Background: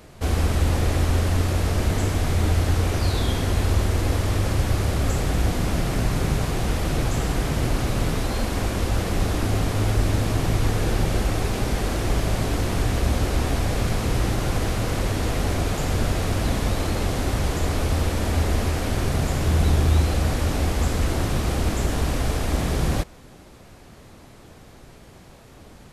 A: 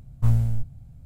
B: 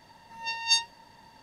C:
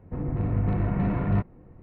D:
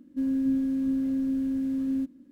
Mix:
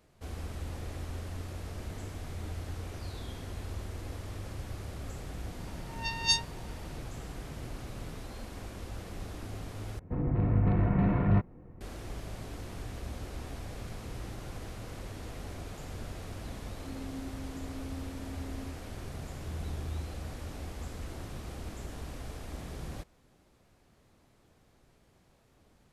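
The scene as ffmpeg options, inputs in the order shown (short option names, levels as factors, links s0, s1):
-filter_complex "[0:a]volume=0.119,asplit=2[s0][s1];[s0]atrim=end=9.994[s2];[3:a]atrim=end=1.82,asetpts=PTS-STARTPTS,volume=0.891[s3];[s1]atrim=start=11.806[s4];[2:a]atrim=end=1.42,asetpts=PTS-STARTPTS,volume=0.708,afade=t=in:d=0.004:c=hsin,afade=t=out:st=1.416:d=0.004:c=hsin,adelay=5580[s5];[4:a]atrim=end=2.31,asetpts=PTS-STARTPTS,volume=0.133,afade=t=in:d=0.004:c=hsin,afade=t=out:st=2.306:d=0.004:c=hsin,adelay=735588S[s6];[s2][s3]acrossfade=d=0.004:c1=hsin:c2=hsin[s7];[s7][s4]acrossfade=d=0.004:c1=hsin:c2=hsin[s8];[s8][s5][s6]amix=inputs=3:normalize=0"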